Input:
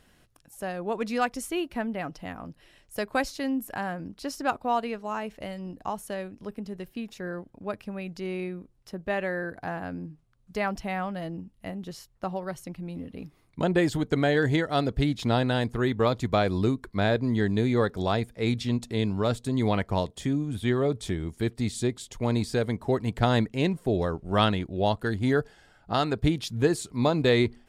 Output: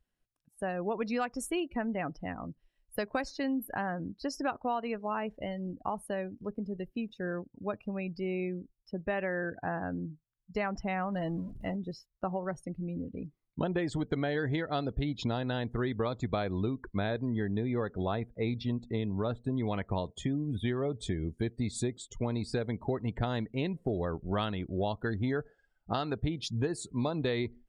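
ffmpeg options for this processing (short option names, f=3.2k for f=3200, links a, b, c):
-filter_complex "[0:a]asettb=1/sr,asplit=3[a][b][c];[a]atrim=end=11.124[d];[b]atrim=start=11.12:end=11.76,asetpts=PTS-STARTPTS,afade=t=in:d=0.004:c=qsin,afade=t=out:st=0.636:d=0.004:c=qsin,aeval=exprs='val(0)+0.5*0.0119*sgn(val(0))':c=same[e];[c]atrim=start=11.756[f];[d][e]acrossfade=d=0.004:c1=hsin:c2=qsin[g];[g][f]acrossfade=d=0.004:c1=qsin:c2=hsin,asettb=1/sr,asplit=3[h][i][j];[h]atrim=end=17.304[k];[i]atrim=start=17.3:end=19.67,asetpts=PTS-STARTPTS,afade=t=in:d=0.004:c=qsin,afade=t=out:st=2.366:d=0.004:c=qsin,highshelf=f=4.9k:g=-10[l];[j]atrim=start=19.666[m];[k][l]acrossfade=d=0.004:c1=hsin:c2=qsin[n];[n][m]acrossfade=d=0.004:c1=qsin:c2=hsin,afftdn=nr=26:nf=-42,acompressor=threshold=-28dB:ratio=6"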